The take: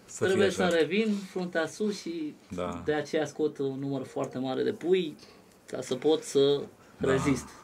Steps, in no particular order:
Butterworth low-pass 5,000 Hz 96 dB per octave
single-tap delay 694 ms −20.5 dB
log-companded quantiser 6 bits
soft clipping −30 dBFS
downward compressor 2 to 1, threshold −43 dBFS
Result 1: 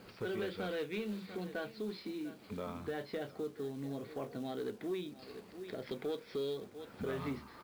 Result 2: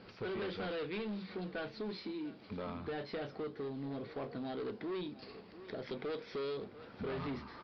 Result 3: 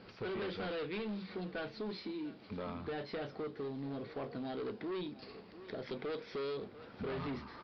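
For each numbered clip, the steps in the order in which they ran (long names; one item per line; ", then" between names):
single-tap delay, then downward compressor, then Butterworth low-pass, then log-companded quantiser, then soft clipping
soft clipping, then log-companded quantiser, then single-tap delay, then downward compressor, then Butterworth low-pass
soft clipping, then single-tap delay, then downward compressor, then log-companded quantiser, then Butterworth low-pass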